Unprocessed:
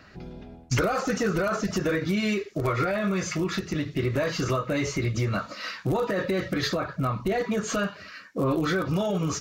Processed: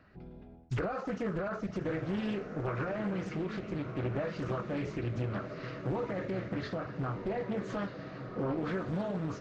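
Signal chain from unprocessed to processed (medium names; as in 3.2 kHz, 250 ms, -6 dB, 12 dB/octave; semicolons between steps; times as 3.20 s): tape spacing loss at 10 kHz 28 dB; echo that smears into a reverb 1283 ms, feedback 54%, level -8 dB; loudspeaker Doppler distortion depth 0.47 ms; trim -7.5 dB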